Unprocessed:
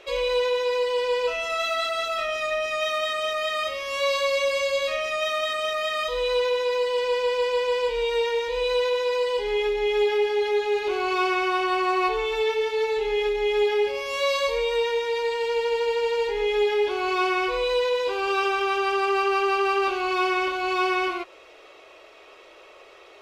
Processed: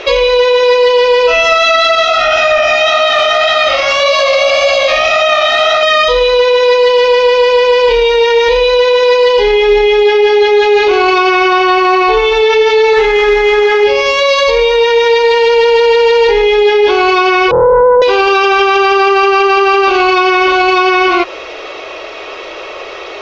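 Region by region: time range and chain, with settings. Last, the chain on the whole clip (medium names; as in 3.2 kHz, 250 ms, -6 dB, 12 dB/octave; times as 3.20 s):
1.95–5.83 s: frequency-shifting echo 92 ms, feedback 53%, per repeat +63 Hz, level -9.5 dB + chorus 1.8 Hz, delay 19 ms, depth 5.8 ms
12.93–13.84 s: one-bit delta coder 64 kbps, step -39.5 dBFS + high-order bell 1.4 kHz +8.5 dB 1.3 oct
17.51–18.02 s: elliptic low-pass 610 Hz, stop band 50 dB + loudspeaker Doppler distortion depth 0.58 ms
whole clip: steep low-pass 6.4 kHz 48 dB/octave; loudness maximiser +24.5 dB; trim -1 dB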